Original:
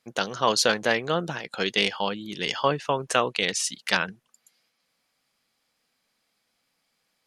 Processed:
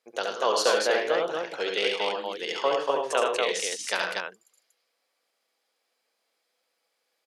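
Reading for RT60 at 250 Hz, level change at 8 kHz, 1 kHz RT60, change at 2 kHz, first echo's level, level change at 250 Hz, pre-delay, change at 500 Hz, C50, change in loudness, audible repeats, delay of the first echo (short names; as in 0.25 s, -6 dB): none, -3.0 dB, none, -2.5 dB, -4.5 dB, -7.5 dB, none, +2.0 dB, none, -1.5 dB, 4, 70 ms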